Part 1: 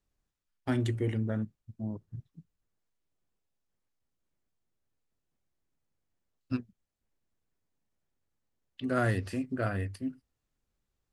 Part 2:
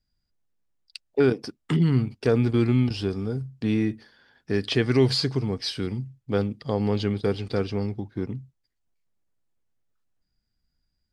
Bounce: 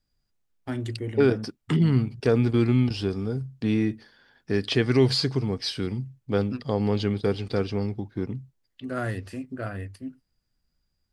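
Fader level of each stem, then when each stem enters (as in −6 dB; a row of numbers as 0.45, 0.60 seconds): −1.5, 0.0 decibels; 0.00, 0.00 seconds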